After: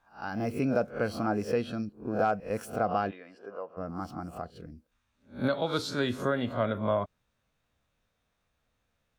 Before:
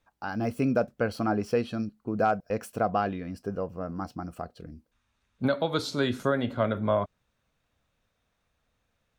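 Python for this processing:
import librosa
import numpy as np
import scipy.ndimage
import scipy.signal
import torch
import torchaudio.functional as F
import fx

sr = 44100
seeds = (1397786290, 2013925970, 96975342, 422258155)

y = fx.spec_swells(x, sr, rise_s=0.31)
y = fx.bandpass_edges(y, sr, low_hz=570.0, high_hz=fx.line((3.1, 3700.0), (3.76, 2300.0)), at=(3.1, 3.76), fade=0.02)
y = y * librosa.db_to_amplitude(-3.0)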